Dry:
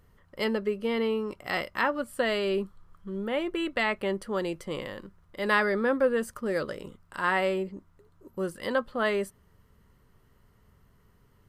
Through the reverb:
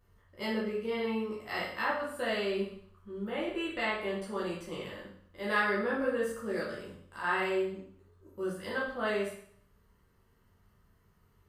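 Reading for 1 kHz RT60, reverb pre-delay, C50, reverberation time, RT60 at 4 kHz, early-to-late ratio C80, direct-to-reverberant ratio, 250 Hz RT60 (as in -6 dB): 0.60 s, 10 ms, 3.0 dB, 0.60 s, 0.60 s, 7.5 dB, -7.5 dB, 0.60 s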